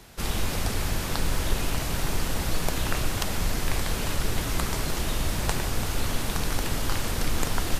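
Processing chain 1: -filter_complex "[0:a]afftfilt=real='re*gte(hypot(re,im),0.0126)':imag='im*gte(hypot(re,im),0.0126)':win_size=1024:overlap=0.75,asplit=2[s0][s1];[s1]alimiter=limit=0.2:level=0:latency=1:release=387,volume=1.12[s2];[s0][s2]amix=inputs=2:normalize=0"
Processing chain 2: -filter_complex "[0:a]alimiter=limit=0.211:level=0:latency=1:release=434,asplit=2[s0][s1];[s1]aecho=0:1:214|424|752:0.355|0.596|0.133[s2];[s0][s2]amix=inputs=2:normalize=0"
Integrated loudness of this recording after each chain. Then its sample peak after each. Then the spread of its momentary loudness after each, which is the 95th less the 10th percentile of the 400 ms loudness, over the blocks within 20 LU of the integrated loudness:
-23.5 LUFS, -28.5 LUFS; -1.5 dBFS, -9.0 dBFS; 1 LU, 2 LU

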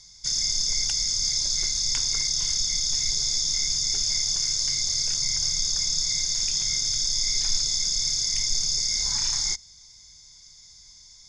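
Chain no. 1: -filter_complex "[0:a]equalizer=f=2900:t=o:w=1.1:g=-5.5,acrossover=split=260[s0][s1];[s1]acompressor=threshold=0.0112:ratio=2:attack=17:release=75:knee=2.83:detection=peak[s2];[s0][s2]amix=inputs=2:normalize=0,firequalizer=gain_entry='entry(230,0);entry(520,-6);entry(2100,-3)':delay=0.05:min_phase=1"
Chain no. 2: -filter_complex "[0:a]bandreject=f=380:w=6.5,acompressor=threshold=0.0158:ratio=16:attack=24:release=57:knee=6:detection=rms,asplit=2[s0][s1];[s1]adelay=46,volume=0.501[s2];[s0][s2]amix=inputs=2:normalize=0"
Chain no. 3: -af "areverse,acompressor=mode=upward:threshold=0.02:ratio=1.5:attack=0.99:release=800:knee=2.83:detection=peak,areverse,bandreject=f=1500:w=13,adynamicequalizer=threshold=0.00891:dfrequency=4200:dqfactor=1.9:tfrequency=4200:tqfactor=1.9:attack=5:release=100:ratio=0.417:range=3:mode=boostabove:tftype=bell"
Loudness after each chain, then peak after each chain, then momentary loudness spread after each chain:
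-33.5 LUFS, -33.5 LUFS, -20.0 LUFS; -16.0 dBFS, -21.5 dBFS, -7.5 dBFS; 18 LU, 13 LU, 1 LU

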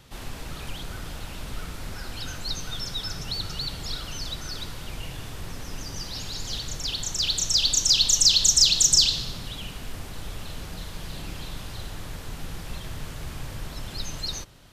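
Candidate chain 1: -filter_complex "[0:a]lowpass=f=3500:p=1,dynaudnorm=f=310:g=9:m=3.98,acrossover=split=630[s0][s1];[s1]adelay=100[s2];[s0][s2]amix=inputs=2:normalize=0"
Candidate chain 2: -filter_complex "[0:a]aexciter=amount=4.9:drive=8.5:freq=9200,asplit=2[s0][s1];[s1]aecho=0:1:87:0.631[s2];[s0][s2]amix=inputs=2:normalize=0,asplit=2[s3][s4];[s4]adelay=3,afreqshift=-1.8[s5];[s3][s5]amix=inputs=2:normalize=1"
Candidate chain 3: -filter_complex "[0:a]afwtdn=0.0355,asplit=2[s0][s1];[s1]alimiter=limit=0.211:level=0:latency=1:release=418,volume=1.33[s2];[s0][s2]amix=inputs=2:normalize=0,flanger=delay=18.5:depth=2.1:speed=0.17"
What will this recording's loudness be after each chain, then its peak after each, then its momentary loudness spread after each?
-20.0 LUFS, -26.5 LUFS, -17.5 LUFS; -2.0 dBFS, -6.0 dBFS, -4.5 dBFS; 19 LU, 17 LU, 22 LU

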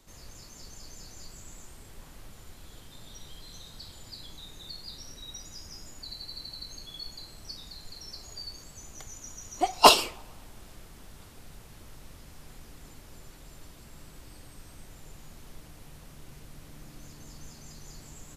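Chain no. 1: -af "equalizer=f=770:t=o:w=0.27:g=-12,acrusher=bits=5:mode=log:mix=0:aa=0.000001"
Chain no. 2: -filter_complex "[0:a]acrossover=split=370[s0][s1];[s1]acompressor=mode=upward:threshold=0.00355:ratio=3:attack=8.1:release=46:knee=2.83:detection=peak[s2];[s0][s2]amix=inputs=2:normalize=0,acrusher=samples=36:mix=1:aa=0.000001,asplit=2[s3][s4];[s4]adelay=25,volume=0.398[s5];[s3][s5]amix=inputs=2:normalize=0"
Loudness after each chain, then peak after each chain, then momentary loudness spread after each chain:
-31.0 LUFS, -29.5 LUFS; -3.5 dBFS, -2.5 dBFS; 13 LU, 18 LU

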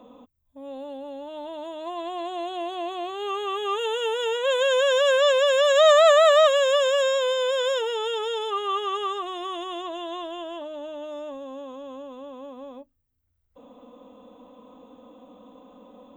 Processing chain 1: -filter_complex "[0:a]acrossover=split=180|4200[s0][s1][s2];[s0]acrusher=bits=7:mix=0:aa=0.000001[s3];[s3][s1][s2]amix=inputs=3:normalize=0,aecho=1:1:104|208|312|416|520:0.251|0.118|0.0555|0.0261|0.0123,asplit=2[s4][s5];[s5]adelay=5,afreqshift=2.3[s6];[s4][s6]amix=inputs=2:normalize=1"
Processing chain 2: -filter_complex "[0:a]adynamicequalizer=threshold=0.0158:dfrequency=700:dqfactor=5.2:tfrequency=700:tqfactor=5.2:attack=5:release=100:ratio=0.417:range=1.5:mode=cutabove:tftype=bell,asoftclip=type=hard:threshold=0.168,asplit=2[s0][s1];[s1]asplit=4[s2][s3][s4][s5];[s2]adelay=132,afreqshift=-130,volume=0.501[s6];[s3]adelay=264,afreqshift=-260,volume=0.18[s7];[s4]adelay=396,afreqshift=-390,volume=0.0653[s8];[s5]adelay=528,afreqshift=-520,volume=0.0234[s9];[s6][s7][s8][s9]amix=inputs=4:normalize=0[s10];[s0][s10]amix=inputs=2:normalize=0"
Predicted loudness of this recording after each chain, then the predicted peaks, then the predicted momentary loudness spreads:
-25.0 LUFS, -23.0 LUFS; -9.0 dBFS, -9.5 dBFS; 23 LU, 20 LU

